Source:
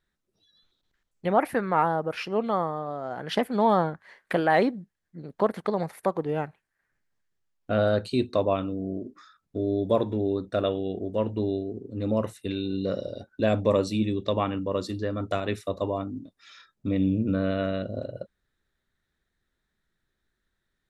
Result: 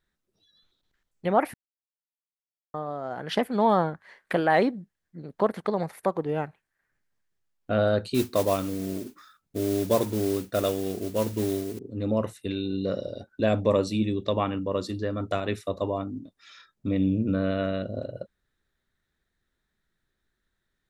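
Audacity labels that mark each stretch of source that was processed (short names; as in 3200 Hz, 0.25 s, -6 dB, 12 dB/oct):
1.540000	2.740000	mute
8.140000	11.790000	modulation noise under the signal 15 dB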